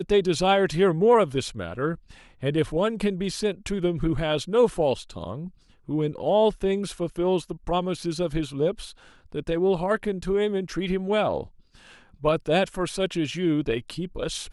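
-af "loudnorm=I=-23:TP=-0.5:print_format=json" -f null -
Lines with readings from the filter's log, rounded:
"input_i" : "-25.4",
"input_tp" : "-8.3",
"input_lra" : "2.1",
"input_thresh" : "-35.9",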